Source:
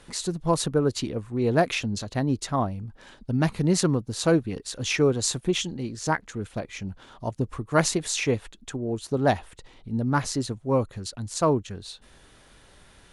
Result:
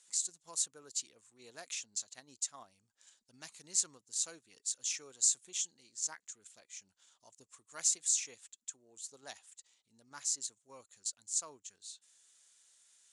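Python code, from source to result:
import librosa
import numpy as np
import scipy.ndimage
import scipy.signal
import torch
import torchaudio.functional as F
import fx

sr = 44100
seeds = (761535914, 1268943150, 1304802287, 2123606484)

p1 = fx.level_steps(x, sr, step_db=12)
p2 = x + (p1 * 10.0 ** (0.0 / 20.0))
y = fx.bandpass_q(p2, sr, hz=7300.0, q=4.1)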